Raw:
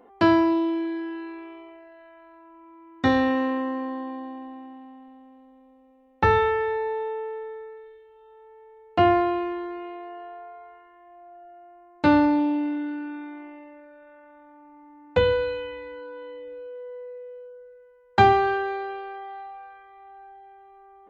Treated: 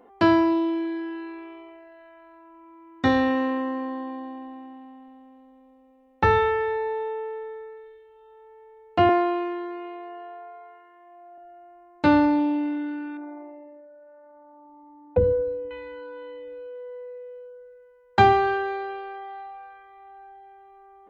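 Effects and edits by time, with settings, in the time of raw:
9.09–11.38 HPF 210 Hz 24 dB/oct
13.17–15.71 formant sharpening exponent 2

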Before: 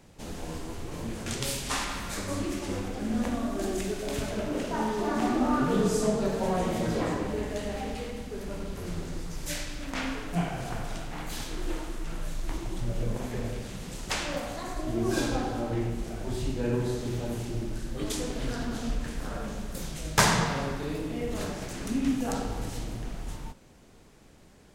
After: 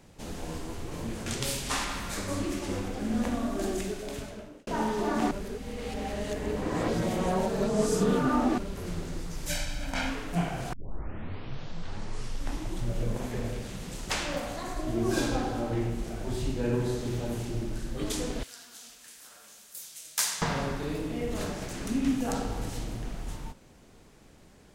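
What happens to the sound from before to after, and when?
3.68–4.67 fade out linear
5.31–8.58 reverse
9.49–10.1 comb 1.3 ms, depth 67%
10.73 tape start 2.03 s
18.43–20.42 differentiator

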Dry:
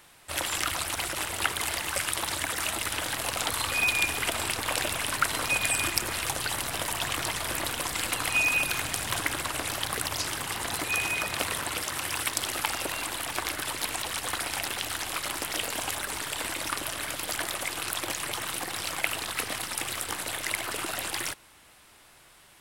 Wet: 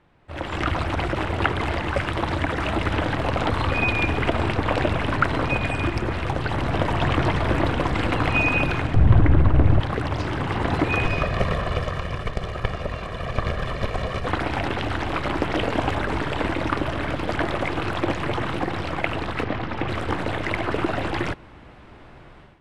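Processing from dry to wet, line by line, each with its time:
8.94–9.8 RIAA curve playback
11.05–14.27 minimum comb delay 1.7 ms
19.44–19.89 air absorption 130 m
whole clip: tilt shelf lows +7.5 dB, about 630 Hz; AGC gain up to 15 dB; LPF 2500 Hz 12 dB/oct; gain -2 dB

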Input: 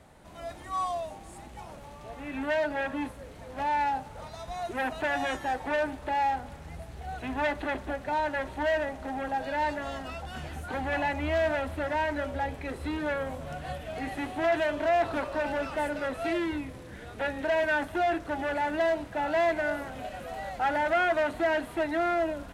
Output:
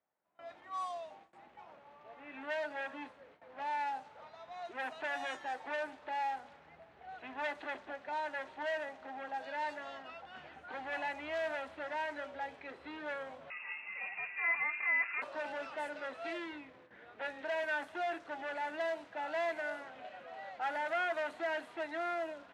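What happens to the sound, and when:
13.5–15.22 inverted band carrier 2700 Hz
whole clip: gate with hold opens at -36 dBFS; weighting filter A; low-pass opened by the level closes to 2000 Hz, open at -24.5 dBFS; gain -8.5 dB

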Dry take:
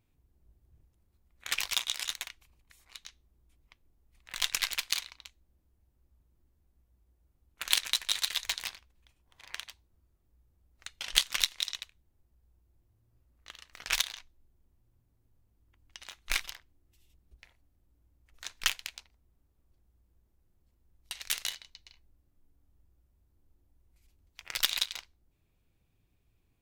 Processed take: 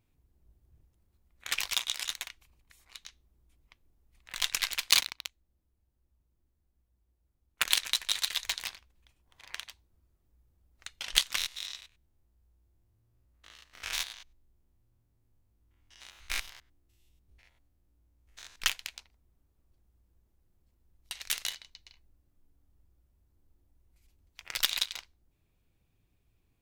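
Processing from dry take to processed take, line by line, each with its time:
4.9–7.66 sample leveller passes 3
11.37–18.56 stepped spectrum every 0.1 s

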